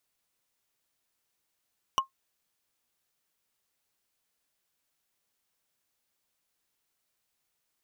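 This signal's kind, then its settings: wood hit, lowest mode 1070 Hz, decay 0.12 s, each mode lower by 4.5 dB, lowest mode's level -17 dB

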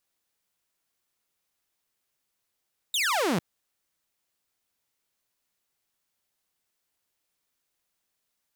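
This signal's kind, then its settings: laser zap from 3900 Hz, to 150 Hz, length 0.45 s saw, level -20.5 dB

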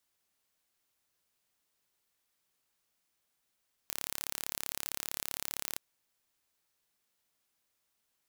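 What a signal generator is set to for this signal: pulse train 35.4/s, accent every 0, -8.5 dBFS 1.88 s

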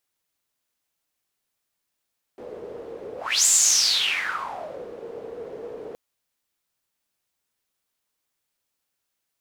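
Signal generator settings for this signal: whoosh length 3.57 s, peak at 1.09, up 0.33 s, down 1.51 s, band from 460 Hz, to 7400 Hz, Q 8.1, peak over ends 20 dB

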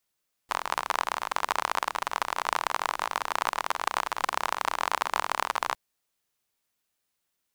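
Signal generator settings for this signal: rain from filtered ticks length 5.26 s, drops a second 41, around 1000 Hz, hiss -25.5 dB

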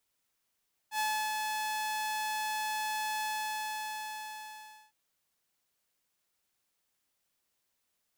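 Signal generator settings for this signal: ADSR saw 860 Hz, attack 80 ms, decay 0.324 s, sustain -3.5 dB, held 2.32 s, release 1.69 s -26 dBFS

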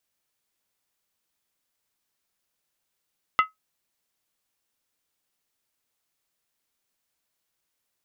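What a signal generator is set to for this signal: skin hit, lowest mode 1280 Hz, decay 0.15 s, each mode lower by 6.5 dB, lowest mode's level -12 dB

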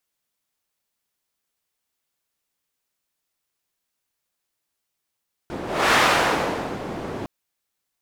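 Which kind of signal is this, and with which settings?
whoosh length 1.76 s, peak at 0.43, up 0.31 s, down 0.98 s, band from 390 Hz, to 1400 Hz, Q 0.76, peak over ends 14 dB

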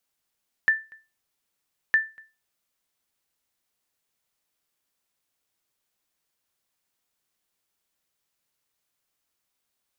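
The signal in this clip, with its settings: sonar ping 1770 Hz, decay 0.28 s, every 1.26 s, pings 2, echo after 0.24 s, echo -27.5 dB -12 dBFS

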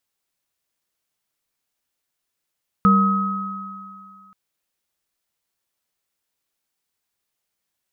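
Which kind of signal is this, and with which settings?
sine partials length 1.48 s, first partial 195 Hz, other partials 468/1270 Hz, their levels -15/-1 dB, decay 2.03 s, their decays 1.13/2.53 s, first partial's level -12 dB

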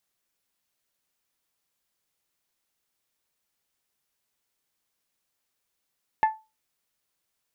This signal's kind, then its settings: glass hit bell, lowest mode 875 Hz, decay 0.26 s, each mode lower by 10 dB, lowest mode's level -14 dB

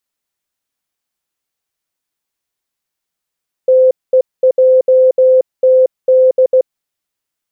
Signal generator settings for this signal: Morse "TEJTD" 16 wpm 516 Hz -5 dBFS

